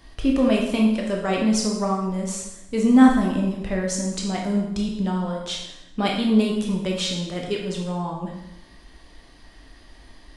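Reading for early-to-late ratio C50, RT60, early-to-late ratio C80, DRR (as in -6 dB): 3.0 dB, 0.90 s, 6.5 dB, -1.5 dB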